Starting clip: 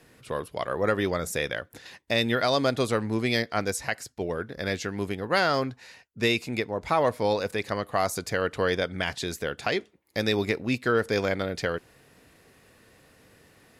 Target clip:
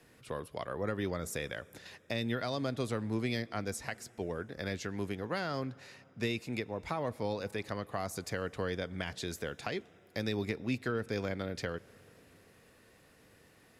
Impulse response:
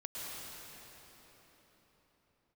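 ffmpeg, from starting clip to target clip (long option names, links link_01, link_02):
-filter_complex "[0:a]acrossover=split=280[link_01][link_02];[link_02]acompressor=threshold=-32dB:ratio=2.5[link_03];[link_01][link_03]amix=inputs=2:normalize=0,asplit=2[link_04][link_05];[link_05]asuperstop=centerf=4400:order=4:qfactor=4.7[link_06];[1:a]atrim=start_sample=2205,asetrate=48510,aresample=44100[link_07];[link_06][link_07]afir=irnorm=-1:irlink=0,volume=-22dB[link_08];[link_04][link_08]amix=inputs=2:normalize=0,volume=-5.5dB"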